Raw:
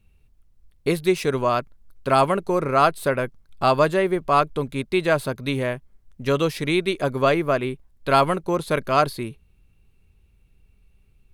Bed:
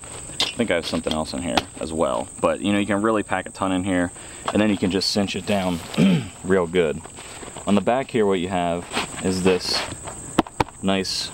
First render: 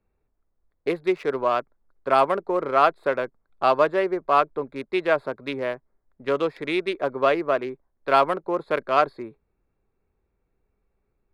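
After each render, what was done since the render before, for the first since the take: local Wiener filter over 15 samples; three-band isolator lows -17 dB, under 300 Hz, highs -12 dB, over 3.8 kHz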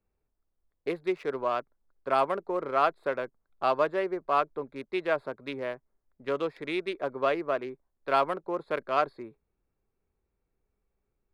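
trim -6.5 dB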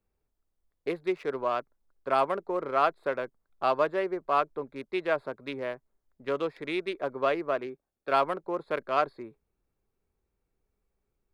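7.67–8.12 s: comb of notches 1 kHz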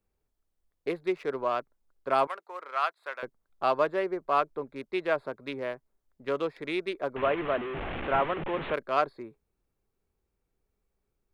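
2.27–3.23 s: high-pass 1.1 kHz; 7.16–8.74 s: one-bit delta coder 16 kbps, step -28.5 dBFS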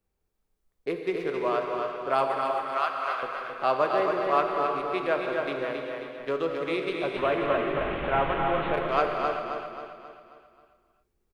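on a send: feedback delay 268 ms, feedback 48%, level -5 dB; on the sum: gated-style reverb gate 430 ms flat, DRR 2.5 dB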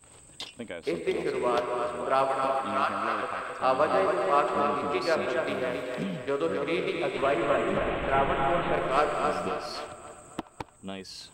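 add bed -17.5 dB

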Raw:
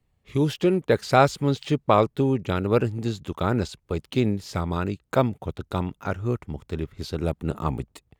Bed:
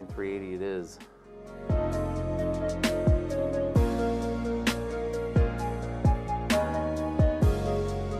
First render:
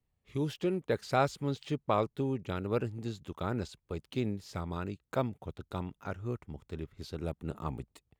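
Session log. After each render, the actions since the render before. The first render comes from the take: trim -10.5 dB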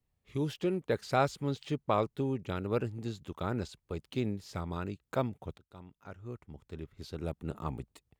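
5.58–7.34 s: fade in, from -20 dB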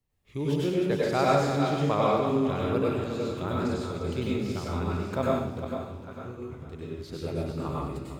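backward echo that repeats 226 ms, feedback 59%, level -7 dB; plate-style reverb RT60 0.65 s, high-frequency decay 1×, pre-delay 85 ms, DRR -4.5 dB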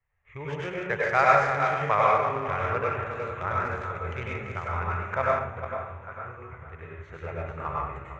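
local Wiener filter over 9 samples; FFT filter 100 Hz 0 dB, 280 Hz -18 dB, 470 Hz -2 dB, 2 kHz +14 dB, 3.9 kHz -7 dB, 6.3 kHz +1 dB, 11 kHz -22 dB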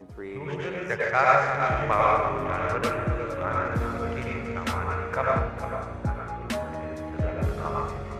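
add bed -5 dB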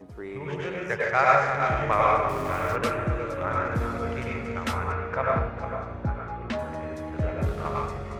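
2.29–2.76 s: small samples zeroed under -39 dBFS; 4.92–6.59 s: distance through air 140 m; 7.45–7.87 s: sliding maximum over 5 samples

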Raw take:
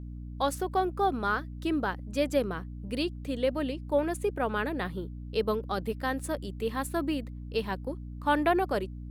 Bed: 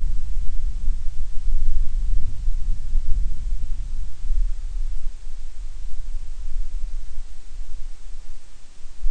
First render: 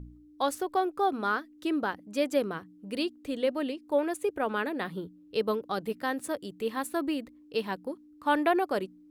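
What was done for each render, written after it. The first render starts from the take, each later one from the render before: de-hum 60 Hz, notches 4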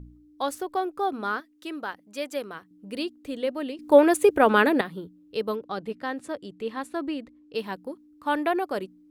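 1.40–2.71 s: bass shelf 470 Hz -10 dB; 3.79–4.81 s: gain +11.5 dB; 5.56–7.55 s: distance through air 62 m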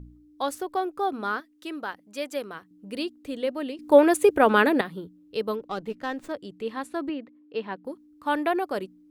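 5.59–6.32 s: sliding maximum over 3 samples; 7.09–7.85 s: band-pass 180–2800 Hz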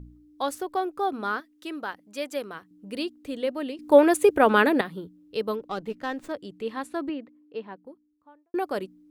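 6.91–8.54 s: studio fade out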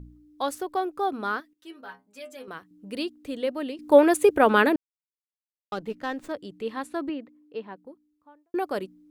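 1.53–2.48 s: inharmonic resonator 61 Hz, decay 0.41 s, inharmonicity 0.008; 4.76–5.72 s: mute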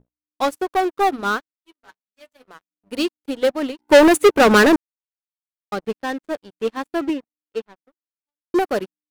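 waveshaping leveller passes 5; upward expansion 2.5:1, over -31 dBFS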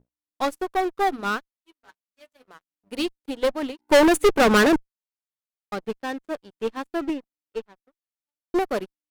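valve stage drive 10 dB, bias 0.75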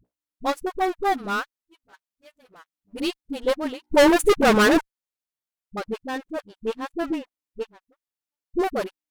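phase dispersion highs, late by 51 ms, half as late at 330 Hz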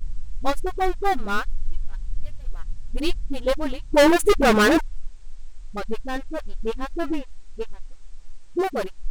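add bed -8 dB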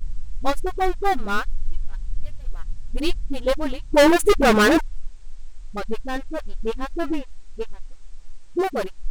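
trim +1 dB

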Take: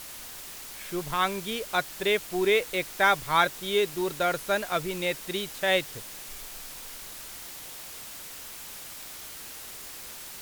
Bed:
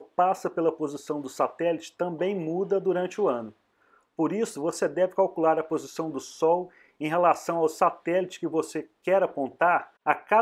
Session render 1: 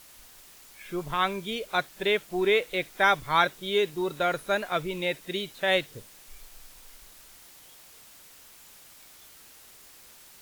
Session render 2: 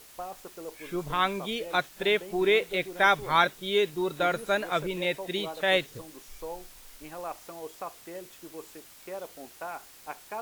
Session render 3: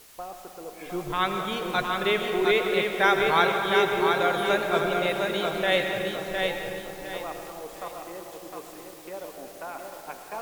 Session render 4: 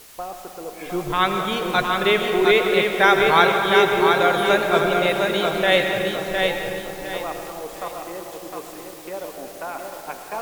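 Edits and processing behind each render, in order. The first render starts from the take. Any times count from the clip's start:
noise print and reduce 10 dB
add bed -16.5 dB
algorithmic reverb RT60 3.5 s, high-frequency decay 0.4×, pre-delay 65 ms, DRR 4.5 dB; bit-crushed delay 709 ms, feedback 35%, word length 8-bit, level -4 dB
trim +6 dB; peak limiter -2 dBFS, peak gain reduction 1 dB

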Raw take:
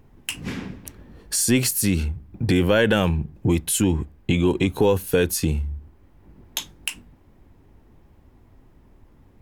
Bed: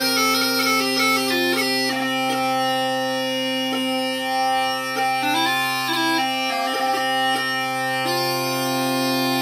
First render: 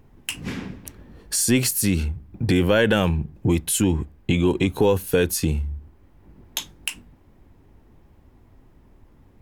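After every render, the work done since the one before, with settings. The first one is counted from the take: no audible change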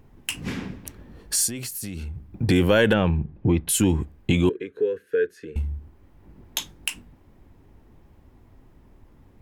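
1.47–2.32 s: compression 10:1, threshold -29 dBFS; 2.93–3.69 s: distance through air 290 m; 4.49–5.56 s: two resonant band-passes 850 Hz, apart 1.9 oct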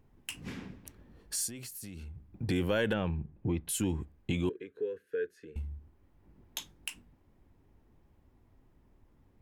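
trim -11.5 dB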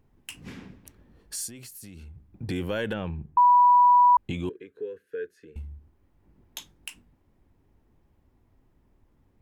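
3.37–4.17 s: bleep 980 Hz -13.5 dBFS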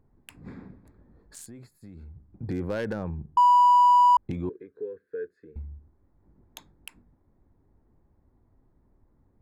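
local Wiener filter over 15 samples

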